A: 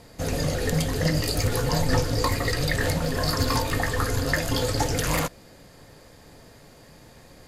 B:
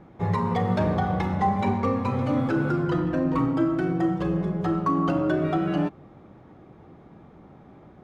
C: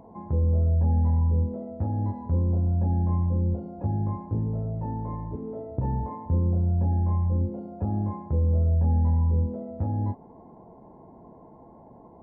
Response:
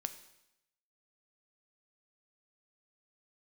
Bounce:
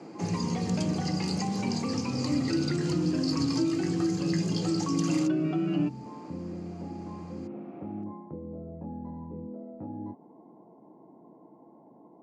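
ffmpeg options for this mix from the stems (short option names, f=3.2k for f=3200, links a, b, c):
-filter_complex "[0:a]aecho=1:1:2.5:0.57,volume=-5dB[a];[1:a]lowpass=3.5k,equalizer=f=2.6k:w=4.7:g=10,acontrast=78,volume=-6dB[b];[2:a]volume=-6.5dB[c];[a][b][c]amix=inputs=3:normalize=0,acrossover=split=200|3000[d][e][f];[e]acompressor=threshold=-41dB:ratio=3[g];[d][g][f]amix=inputs=3:normalize=0,highpass=f=150:w=0.5412,highpass=f=150:w=1.3066,equalizer=f=310:t=q:w=4:g=9,equalizer=f=1.7k:t=q:w=4:g=-4,equalizer=f=3.6k:t=q:w=4:g=-9,lowpass=f=6.7k:w=0.5412,lowpass=f=6.7k:w=1.3066"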